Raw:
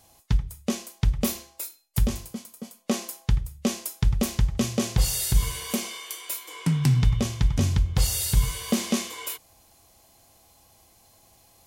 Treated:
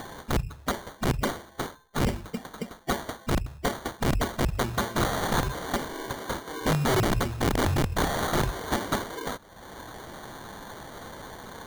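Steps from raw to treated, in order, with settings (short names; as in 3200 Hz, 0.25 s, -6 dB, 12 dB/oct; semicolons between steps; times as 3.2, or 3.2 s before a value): bin magnitudes rounded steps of 30 dB; upward compressor, threshold -26 dBFS; sample-and-hold 17×; wrapped overs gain 18.5 dB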